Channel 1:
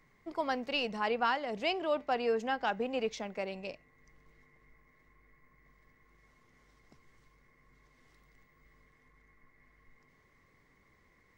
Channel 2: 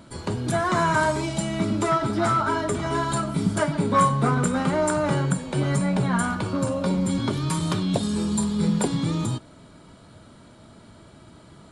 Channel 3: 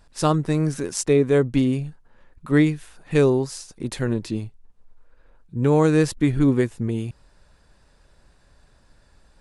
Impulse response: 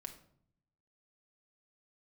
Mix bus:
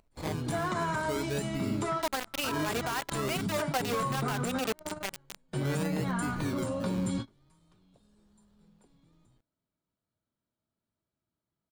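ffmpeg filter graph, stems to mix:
-filter_complex "[0:a]highshelf=f=6.4k:g=3,acrusher=bits=4:mix=0:aa=0.000001,adelay=1650,volume=1dB[a];[1:a]volume=-7dB[b];[2:a]acrusher=samples=26:mix=1:aa=0.000001:lfo=1:lforange=15.6:lforate=0.45,volume=-16dB,asplit=2[c][d];[d]apad=whole_len=516549[e];[b][e]sidechaingate=range=-34dB:threshold=-59dB:ratio=16:detection=peak[f];[a][f][c]amix=inputs=3:normalize=0,alimiter=limit=-22.5dB:level=0:latency=1:release=57"

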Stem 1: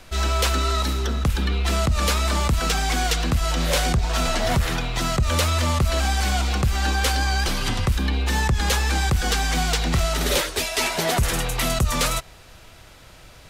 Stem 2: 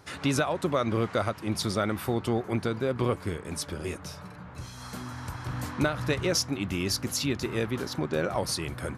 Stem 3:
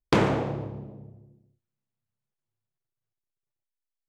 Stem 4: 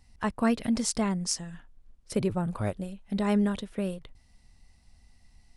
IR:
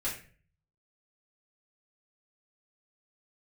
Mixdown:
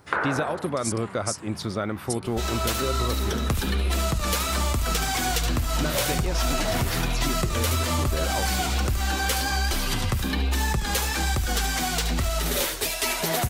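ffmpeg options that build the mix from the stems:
-filter_complex "[0:a]aemphasis=mode=production:type=50fm,dynaudnorm=f=280:g=5:m=11.5dB,flanger=delay=3:depth=6.2:regen=-40:speed=1.2:shape=sinusoidal,adelay=2250,volume=1dB,asplit=2[a][b];[b]volume=-16.5dB[c];[1:a]volume=0.5dB[d];[2:a]highpass=570,lowpass=f=1.5k:t=q:w=5.5,volume=1dB[e];[3:a]acompressor=threshold=-38dB:ratio=2.5,aemphasis=mode=production:type=riaa,dynaudnorm=f=300:g=3:m=7.5dB,volume=-8dB[f];[e][f]amix=inputs=2:normalize=0,acompressor=threshold=-27dB:ratio=2,volume=0dB[g];[a][d]amix=inputs=2:normalize=0,highshelf=f=3.9k:g=-8,acompressor=threshold=-21dB:ratio=6,volume=0dB[h];[c]aecho=0:1:73:1[i];[g][h][i]amix=inputs=3:normalize=0"

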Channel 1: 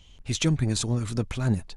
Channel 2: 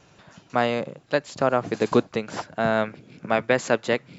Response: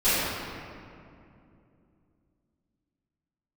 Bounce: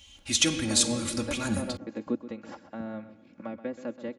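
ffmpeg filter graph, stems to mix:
-filter_complex "[0:a]crystalizer=i=9:c=0,volume=-6dB,asplit=2[a][b];[b]volume=-24dB[c];[1:a]acrossover=split=430[d][e];[e]acompressor=threshold=-32dB:ratio=10[f];[d][f]amix=inputs=2:normalize=0,adelay=150,volume=-11dB,asplit=2[g][h];[h]volume=-13.5dB[i];[2:a]atrim=start_sample=2205[j];[c][j]afir=irnorm=-1:irlink=0[k];[i]aecho=0:1:128|256|384|512|640:1|0.32|0.102|0.0328|0.0105[l];[a][g][k][l]amix=inputs=4:normalize=0,highpass=51,highshelf=f=3.8k:g=-10.5,aecho=1:1:3.6:0.86"

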